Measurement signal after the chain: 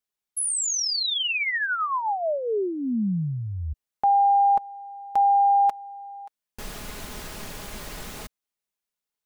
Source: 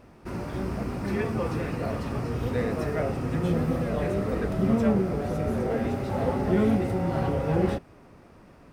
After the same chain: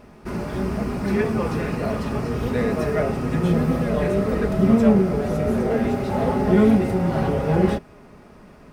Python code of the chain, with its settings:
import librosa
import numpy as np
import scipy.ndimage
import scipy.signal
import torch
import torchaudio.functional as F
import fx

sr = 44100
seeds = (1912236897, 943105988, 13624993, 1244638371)

y = x + 0.38 * np.pad(x, (int(4.8 * sr / 1000.0), 0))[:len(x)]
y = y * 10.0 ** (5.0 / 20.0)